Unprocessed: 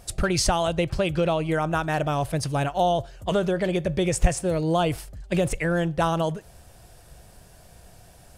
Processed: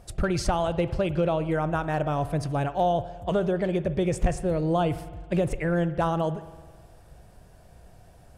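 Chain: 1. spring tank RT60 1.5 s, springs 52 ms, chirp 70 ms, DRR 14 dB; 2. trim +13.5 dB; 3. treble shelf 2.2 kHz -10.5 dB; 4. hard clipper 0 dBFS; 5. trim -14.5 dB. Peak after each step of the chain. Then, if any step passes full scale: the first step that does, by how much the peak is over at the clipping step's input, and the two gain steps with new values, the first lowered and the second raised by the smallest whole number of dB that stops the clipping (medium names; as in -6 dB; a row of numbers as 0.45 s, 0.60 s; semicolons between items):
-7.0 dBFS, +6.5 dBFS, +6.5 dBFS, 0.0 dBFS, -14.5 dBFS; step 2, 6.5 dB; step 2 +6.5 dB, step 5 -7.5 dB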